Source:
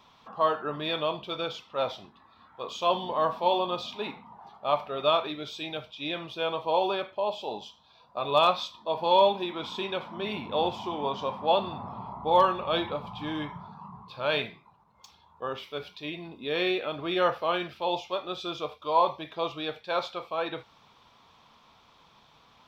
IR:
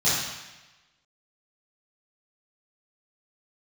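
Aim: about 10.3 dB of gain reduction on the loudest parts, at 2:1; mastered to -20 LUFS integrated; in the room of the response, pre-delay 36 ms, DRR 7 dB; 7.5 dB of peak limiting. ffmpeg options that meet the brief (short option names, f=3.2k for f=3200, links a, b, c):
-filter_complex "[0:a]acompressor=threshold=-36dB:ratio=2,alimiter=level_in=3.5dB:limit=-24dB:level=0:latency=1,volume=-3.5dB,asplit=2[a][b];[1:a]atrim=start_sample=2205,adelay=36[c];[b][c]afir=irnorm=-1:irlink=0,volume=-22dB[d];[a][d]amix=inputs=2:normalize=0,volume=18.5dB"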